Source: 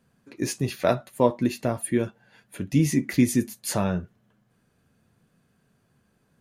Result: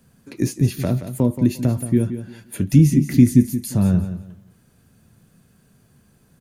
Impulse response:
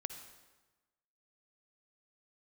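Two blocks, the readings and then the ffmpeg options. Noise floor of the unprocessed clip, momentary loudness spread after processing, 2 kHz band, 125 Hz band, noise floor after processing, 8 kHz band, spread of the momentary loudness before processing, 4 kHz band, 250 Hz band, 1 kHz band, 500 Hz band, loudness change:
-68 dBFS, 14 LU, -3.5 dB, +11.0 dB, -58 dBFS, 0.0 dB, 9 LU, -1.5 dB, +7.5 dB, n/a, -2.0 dB, +6.5 dB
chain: -filter_complex "[0:a]highshelf=f=5k:g=11.5,acrossover=split=320[a][b];[b]acompressor=threshold=-36dB:ratio=8[c];[a][c]amix=inputs=2:normalize=0,lowshelf=f=260:g=8.5,aecho=1:1:175|350|525:0.282|0.0705|0.0176,volume=4.5dB"

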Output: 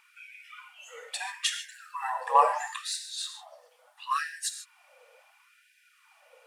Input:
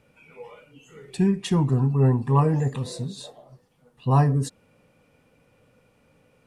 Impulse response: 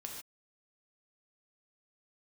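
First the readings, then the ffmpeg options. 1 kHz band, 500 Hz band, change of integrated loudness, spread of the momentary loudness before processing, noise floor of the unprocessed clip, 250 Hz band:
+3.0 dB, -8.0 dB, -7.0 dB, 14 LU, -63 dBFS, under -40 dB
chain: -filter_complex "[0:a]aphaser=in_gain=1:out_gain=1:delay=4.6:decay=0.35:speed=1.7:type=triangular,asplit=2[a][b];[1:a]atrim=start_sample=2205,afade=t=out:st=0.35:d=0.01,atrim=end_sample=15876[c];[b][c]afir=irnorm=-1:irlink=0,volume=3.5dB[d];[a][d]amix=inputs=2:normalize=0,afftfilt=real='re*gte(b*sr/1024,450*pow(1500/450,0.5+0.5*sin(2*PI*0.74*pts/sr)))':imag='im*gte(b*sr/1024,450*pow(1500/450,0.5+0.5*sin(2*PI*0.74*pts/sr)))':win_size=1024:overlap=0.75"

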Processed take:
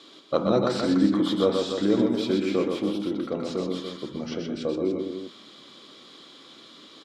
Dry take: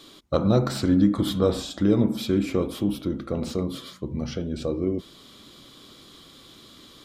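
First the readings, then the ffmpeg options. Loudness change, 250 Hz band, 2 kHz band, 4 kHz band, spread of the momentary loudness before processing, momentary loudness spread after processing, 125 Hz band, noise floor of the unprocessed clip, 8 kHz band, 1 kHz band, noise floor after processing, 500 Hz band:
-0.5 dB, -1.0 dB, +2.0 dB, +1.0 dB, 10 LU, 11 LU, -8.0 dB, -50 dBFS, -4.0 dB, +2.0 dB, -50 dBFS, +1.5 dB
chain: -af "highpass=250,lowpass=5.6k,aecho=1:1:125.4|288.6:0.631|0.398"

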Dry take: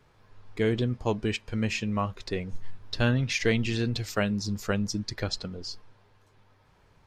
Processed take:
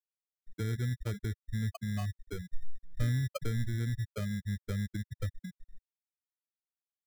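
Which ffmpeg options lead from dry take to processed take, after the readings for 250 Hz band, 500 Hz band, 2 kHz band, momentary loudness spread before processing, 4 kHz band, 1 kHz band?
-10.0 dB, -15.0 dB, -13.0 dB, 13 LU, -15.5 dB, -14.5 dB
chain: -filter_complex "[0:a]aemphasis=mode=reproduction:type=75fm,bandreject=f=144.3:t=h:w=4,bandreject=f=288.6:t=h:w=4,bandreject=f=432.9:t=h:w=4,bandreject=f=577.2:t=h:w=4,bandreject=f=721.5:t=h:w=4,bandreject=f=865.8:t=h:w=4,bandreject=f=1.0101k:t=h:w=4,bandreject=f=1.1544k:t=h:w=4,bandreject=f=1.2987k:t=h:w=4,bandreject=f=1.443k:t=h:w=4,bandreject=f=1.5873k:t=h:w=4,bandreject=f=1.7316k:t=h:w=4,bandreject=f=1.8759k:t=h:w=4,bandreject=f=2.0202k:t=h:w=4,bandreject=f=2.1645k:t=h:w=4,bandreject=f=2.3088k:t=h:w=4,bandreject=f=2.4531k:t=h:w=4,bandreject=f=2.5974k:t=h:w=4,bandreject=f=2.7417k:t=h:w=4,bandreject=f=2.886k:t=h:w=4,bandreject=f=3.0303k:t=h:w=4,bandreject=f=3.1746k:t=h:w=4,bandreject=f=3.3189k:t=h:w=4,bandreject=f=3.4632k:t=h:w=4,bandreject=f=3.6075k:t=h:w=4,bandreject=f=3.7518k:t=h:w=4,bandreject=f=3.8961k:t=h:w=4,bandreject=f=4.0404k:t=h:w=4,bandreject=f=4.1847k:t=h:w=4,bandreject=f=4.329k:t=h:w=4,bandreject=f=4.4733k:t=h:w=4,bandreject=f=4.6176k:t=h:w=4,bandreject=f=4.7619k:t=h:w=4,bandreject=f=4.9062k:t=h:w=4,bandreject=f=5.0505k:t=h:w=4,bandreject=f=5.1948k:t=h:w=4,bandreject=f=5.3391k:t=h:w=4,bandreject=f=5.4834k:t=h:w=4,bandreject=f=5.6277k:t=h:w=4,afftfilt=real='re*gte(hypot(re,im),0.178)':imag='im*gte(hypot(re,im),0.178)':win_size=1024:overlap=0.75,acrossover=split=130|2200[a][b][c];[b]acompressor=threshold=-44dB:ratio=4[d];[a][d][c]amix=inputs=3:normalize=0,acrusher=samples=24:mix=1:aa=0.000001,asplit=2[e][f];[f]asoftclip=type=tanh:threshold=-34dB,volume=-8dB[g];[e][g]amix=inputs=2:normalize=0,volume=-1dB"

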